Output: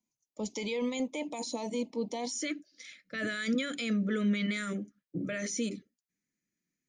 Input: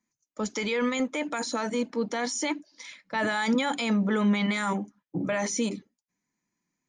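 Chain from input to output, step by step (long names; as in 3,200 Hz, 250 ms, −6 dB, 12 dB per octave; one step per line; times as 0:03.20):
Butterworth band-reject 1,500 Hz, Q 1.1, from 0:02.31 890 Hz
level −5 dB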